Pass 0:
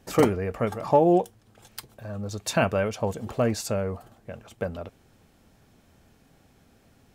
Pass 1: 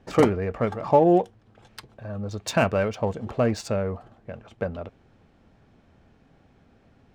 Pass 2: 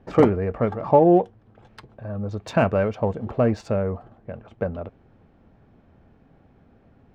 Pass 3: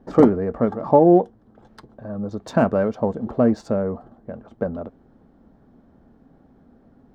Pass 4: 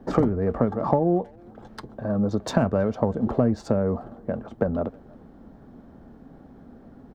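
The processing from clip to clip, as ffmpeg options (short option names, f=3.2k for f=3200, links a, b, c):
-af "adynamicsmooth=sensitivity=4.5:basefreq=3.5k,volume=1.5dB"
-af "lowpass=f=1.3k:p=1,volume=3dB"
-af "equalizer=f=100:t=o:w=0.67:g=-8,equalizer=f=250:t=o:w=0.67:g=6,equalizer=f=2.5k:t=o:w=0.67:g=-12,volume=1dB"
-filter_complex "[0:a]acrossover=split=120[a][b];[b]acompressor=threshold=-25dB:ratio=10[c];[a][c]amix=inputs=2:normalize=0,asplit=2[d][e];[e]adelay=320,highpass=300,lowpass=3.4k,asoftclip=type=hard:threshold=-24.5dB,volume=-26dB[f];[d][f]amix=inputs=2:normalize=0,volume=6dB"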